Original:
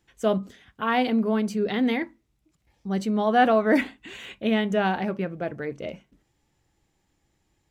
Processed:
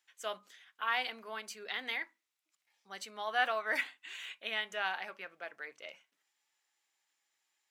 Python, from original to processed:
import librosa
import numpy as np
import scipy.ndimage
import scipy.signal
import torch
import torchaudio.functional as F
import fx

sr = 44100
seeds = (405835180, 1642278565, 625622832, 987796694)

y = scipy.signal.sosfilt(scipy.signal.butter(2, 1300.0, 'highpass', fs=sr, output='sos'), x)
y = y * librosa.db_to_amplitude(-3.5)